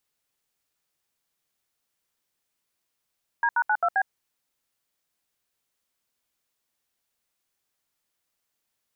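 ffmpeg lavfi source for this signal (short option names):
-f lavfi -i "aevalsrc='0.0794*clip(min(mod(t,0.132),0.06-mod(t,0.132))/0.002,0,1)*(eq(floor(t/0.132),0)*(sin(2*PI*941*mod(t,0.132))+sin(2*PI*1633*mod(t,0.132)))+eq(floor(t/0.132),1)*(sin(2*PI*941*mod(t,0.132))+sin(2*PI*1477*mod(t,0.132)))+eq(floor(t/0.132),2)*(sin(2*PI*852*mod(t,0.132))+sin(2*PI*1477*mod(t,0.132)))+eq(floor(t/0.132),3)*(sin(2*PI*697*mod(t,0.132))+sin(2*PI*1336*mod(t,0.132)))+eq(floor(t/0.132),4)*(sin(2*PI*770*mod(t,0.132))+sin(2*PI*1633*mod(t,0.132))))':d=0.66:s=44100"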